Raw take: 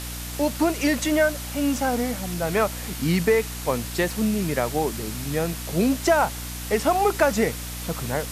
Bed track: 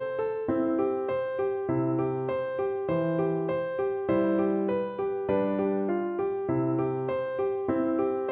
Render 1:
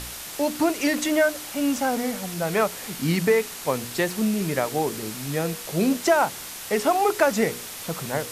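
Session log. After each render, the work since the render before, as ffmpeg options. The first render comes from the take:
-af "bandreject=f=60:t=h:w=4,bandreject=f=120:t=h:w=4,bandreject=f=180:t=h:w=4,bandreject=f=240:t=h:w=4,bandreject=f=300:t=h:w=4,bandreject=f=360:t=h:w=4,bandreject=f=420:t=h:w=4,bandreject=f=480:t=h:w=4"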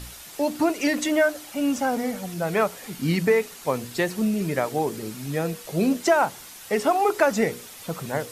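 -af "afftdn=nr=8:nf=-37"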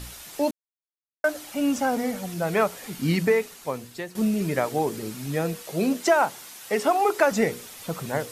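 -filter_complex "[0:a]asettb=1/sr,asplit=3[a][b][c];[a]atrim=end=5.634[d];[b]atrim=start=5.63:end=7.32,asetpts=PTS-STARTPTS,afade=t=in:d=0.004:c=qsin,afade=t=out:st=1.686:d=0.004:c=qsin,highpass=f=210:p=1[e];[c]atrim=start=7.316[f];[d][e]acrossfade=d=0.004:c1=hsin:c2=qsin[g];[g][f]acrossfade=d=0.004:c1=qsin:c2=hsin,asplit=4[h][i][j][k];[h]atrim=end=0.51,asetpts=PTS-STARTPTS,afade=t=out:st=0.506:d=0.004:c=hsin[l];[i]atrim=start=0.51:end=1.24,asetpts=PTS-STARTPTS,volume=0[m];[j]atrim=start=1.24:end=4.15,asetpts=PTS-STARTPTS,afade=t=in:d=0.004:c=hsin,afade=t=out:st=1.92:d=0.99:silence=0.211349[n];[k]atrim=start=4.15,asetpts=PTS-STARTPTS,afade=t=in:d=0.004:c=hsin:silence=0.211349[o];[l][m][n][o]concat=n=4:v=0:a=1"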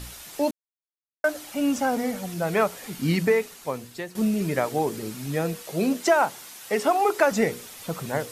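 -af anull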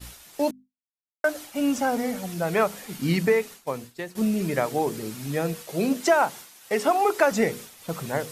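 -af "bandreject=f=51.21:t=h:w=4,bandreject=f=102.42:t=h:w=4,bandreject=f=153.63:t=h:w=4,bandreject=f=204.84:t=h:w=4,bandreject=f=256.05:t=h:w=4,agate=range=-33dB:threshold=-36dB:ratio=3:detection=peak"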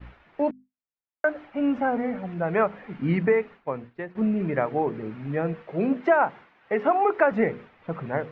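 -af "lowpass=f=2.2k:w=0.5412,lowpass=f=2.2k:w=1.3066"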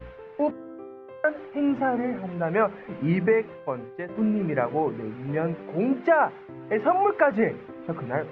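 -filter_complex "[1:a]volume=-14.5dB[a];[0:a][a]amix=inputs=2:normalize=0"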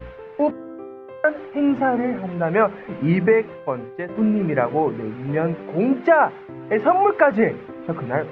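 -af "volume=5dB"

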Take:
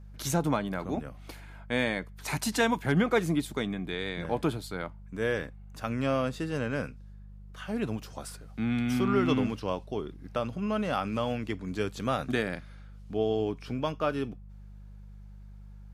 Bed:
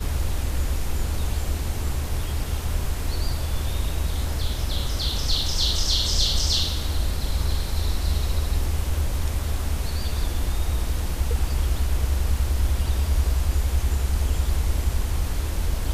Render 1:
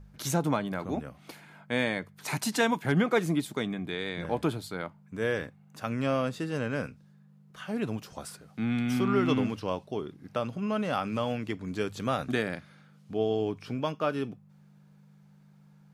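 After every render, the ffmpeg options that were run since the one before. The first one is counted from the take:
-af "bandreject=f=50:t=h:w=4,bandreject=f=100:t=h:w=4"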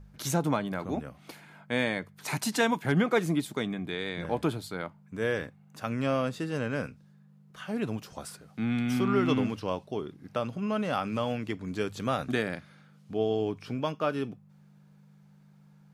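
-af anull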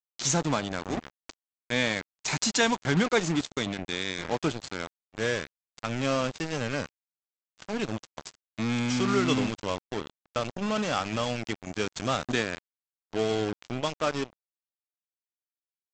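-af "crystalizer=i=3:c=0,aresample=16000,acrusher=bits=4:mix=0:aa=0.5,aresample=44100"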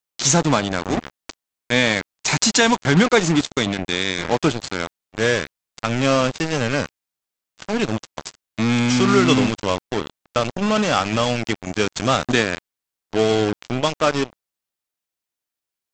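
-af "volume=9.5dB,alimiter=limit=-3dB:level=0:latency=1"

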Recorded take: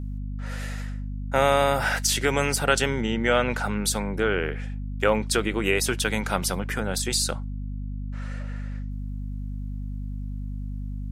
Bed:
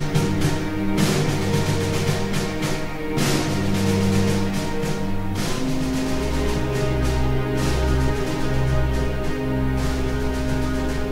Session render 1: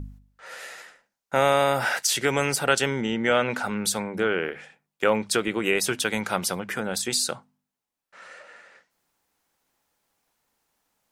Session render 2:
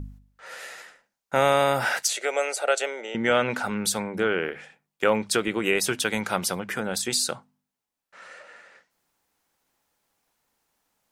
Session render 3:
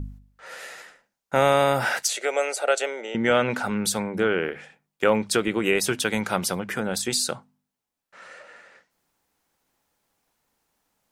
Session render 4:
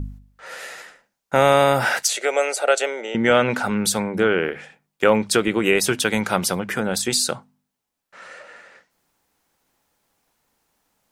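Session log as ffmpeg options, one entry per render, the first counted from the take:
-af "bandreject=f=50:t=h:w=4,bandreject=f=100:t=h:w=4,bandreject=f=150:t=h:w=4,bandreject=f=200:t=h:w=4,bandreject=f=250:t=h:w=4"
-filter_complex "[0:a]asettb=1/sr,asplit=3[a][b][c];[a]atrim=end=2.084[d];[b]atrim=start=2.08:end=3.15,asetpts=PTS-STARTPTS,afade=t=in:d=0.004:c=qsin,afade=t=out:st=1.066:d=0.004:c=qsin,highpass=f=470:w=0.5412,highpass=f=470:w=1.3066,equalizer=f=620:t=q:w=4:g=8,equalizer=f=1k:t=q:w=4:g=-10,equalizer=f=1.7k:t=q:w=4:g=-6,equalizer=f=3.1k:t=q:w=4:g=-7,equalizer=f=5.2k:t=q:w=4:g=-9,equalizer=f=9k:t=q:w=4:g=-4,lowpass=f=9.9k:w=0.5412,lowpass=f=9.9k:w=1.3066[e];[c]atrim=start=3.146[f];[d][e]acrossfade=d=0.004:c1=hsin:c2=qsin[g];[g][f]acrossfade=d=0.004:c1=qsin:c2=hsin"
-af "lowshelf=f=490:g=3.5"
-af "volume=4dB,alimiter=limit=-2dB:level=0:latency=1"

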